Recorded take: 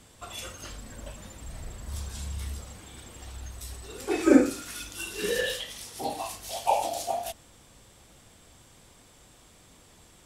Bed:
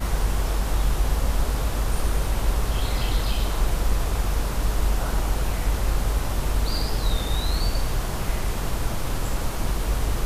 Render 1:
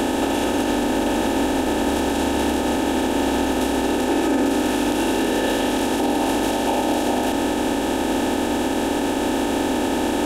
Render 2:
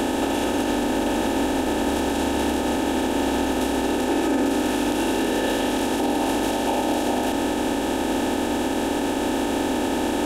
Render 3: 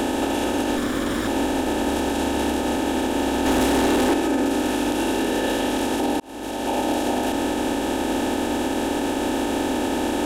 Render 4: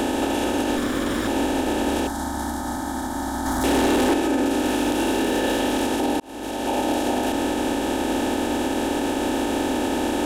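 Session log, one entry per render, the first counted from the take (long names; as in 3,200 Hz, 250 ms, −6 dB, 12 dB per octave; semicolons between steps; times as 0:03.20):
compressor on every frequency bin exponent 0.2; brickwall limiter −11.5 dBFS, peak gain reduction 10.5 dB
level −2 dB
0:00.77–0:01.28: lower of the sound and its delayed copy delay 0.56 ms; 0:03.45–0:04.14: leveller curve on the samples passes 2; 0:06.20–0:06.78: fade in
0:02.07–0:03.64: phaser with its sweep stopped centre 1,100 Hz, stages 4; 0:04.64–0:05.87: mu-law and A-law mismatch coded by mu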